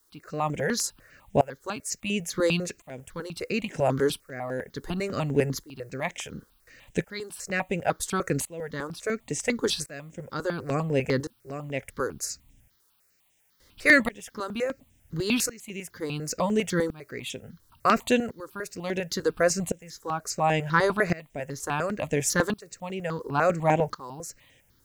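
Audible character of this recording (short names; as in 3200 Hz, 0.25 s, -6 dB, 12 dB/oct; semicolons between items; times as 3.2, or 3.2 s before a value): tremolo saw up 0.71 Hz, depth 95%; a quantiser's noise floor 12-bit, dither triangular; notches that jump at a steady rate 10 Hz 670–4400 Hz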